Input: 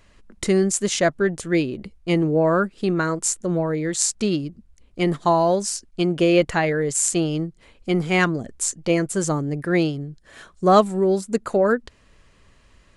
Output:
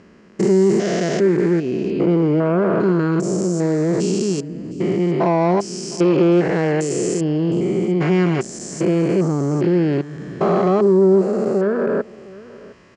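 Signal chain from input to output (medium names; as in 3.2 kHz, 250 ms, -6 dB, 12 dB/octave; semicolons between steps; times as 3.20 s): spectrogram pixelated in time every 400 ms; in parallel at +2 dB: compression, threshold -31 dBFS, peak gain reduction 14 dB; on the sum: treble shelf 3.7 kHz -8.5 dB; saturation -17.5 dBFS, distortion -15 dB; cabinet simulation 140–7700 Hz, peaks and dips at 180 Hz +5 dB, 390 Hz +7 dB, 3.7 kHz -6 dB, 5.3 kHz +5 dB; delay 710 ms -20.5 dB; trim +4.5 dB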